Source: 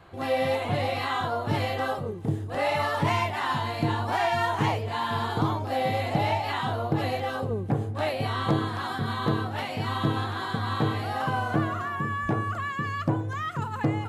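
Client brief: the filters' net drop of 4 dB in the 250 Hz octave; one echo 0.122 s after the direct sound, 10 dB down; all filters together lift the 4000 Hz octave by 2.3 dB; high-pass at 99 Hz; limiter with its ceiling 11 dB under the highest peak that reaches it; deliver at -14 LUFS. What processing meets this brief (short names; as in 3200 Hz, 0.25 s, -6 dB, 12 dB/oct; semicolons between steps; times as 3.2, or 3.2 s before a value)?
HPF 99 Hz; bell 250 Hz -5.5 dB; bell 4000 Hz +3 dB; limiter -24 dBFS; echo 0.122 s -10 dB; gain +18 dB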